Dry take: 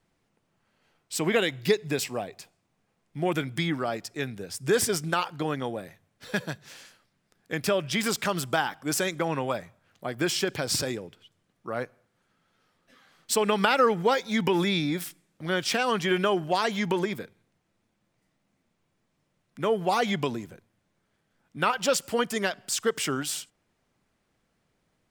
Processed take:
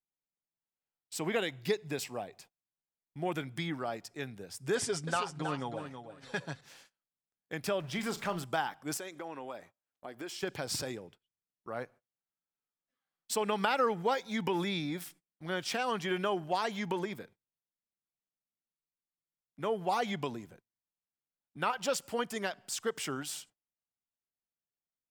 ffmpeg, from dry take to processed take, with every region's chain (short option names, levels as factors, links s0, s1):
-filter_complex "[0:a]asettb=1/sr,asplit=3[s0][s1][s2];[s0]atrim=end=4.754[s3];[s1]atrim=start=4.75:end=6.61,asetpts=PTS-STARTPTS,afade=t=in:d=0.004:c=qsin,afade=t=out:st=1.856:d=0.004:c=qsin,lowpass=f=9300:w=0.5412,lowpass=f=9300:w=1.3066,aecho=1:1:7.3:0.47,atrim=end_sample=82026,aecho=1:1:322|644|966:0.376|0.0752|0.015,atrim=end_sample=82026[s4];[s2]atrim=start=6.606[s5];[s3][s4]acrossfade=d=0.004:c1=hsin:c2=qsin[s6];[s6][s5]acrossfade=d=0.004:c1=qsin:c2=hsin,asettb=1/sr,asplit=3[s7][s8][s9];[s7]atrim=end=7.804[s10];[s8]atrim=start=7.8:end=8.44,asetpts=PTS-STARTPTS,afade=t=in:d=0.004:c=qsin,afade=t=out:st=0.636:d=0.004:c=qsin,aeval=exprs='val(0)+0.5*0.0126*sgn(val(0))':c=same,highshelf=f=3200:g=-7,asplit=2[s11][s12];[s12]adelay=39,volume=0.251[s13];[s11][s13]amix=inputs=2:normalize=0,atrim=end_sample=28224[s14];[s9]atrim=start=8.436[s15];[s10][s14]acrossfade=d=0.004:c1=hsin:c2=qsin[s16];[s16][s15]acrossfade=d=0.004:c1=qsin:c2=hsin,asettb=1/sr,asplit=3[s17][s18][s19];[s17]atrim=end=8.974[s20];[s18]atrim=start=8.97:end=10.43,asetpts=PTS-STARTPTS,afade=t=in:d=0.004:c=qsin,afade=t=out:st=1.456:d=0.004:c=qsin,lowshelf=f=210:t=q:w=1.5:g=-7.5,acompressor=threshold=0.0158:ratio=2:attack=3.2:release=140:knee=1:detection=peak[s21];[s19]atrim=start=10.426[s22];[s20][s21]acrossfade=d=0.004:c1=hsin:c2=qsin[s23];[s23][s22]acrossfade=d=0.004:c1=qsin:c2=hsin,agate=range=0.0562:threshold=0.00398:ratio=16:detection=peak,equalizer=f=830:w=2.1:g=4,volume=0.376"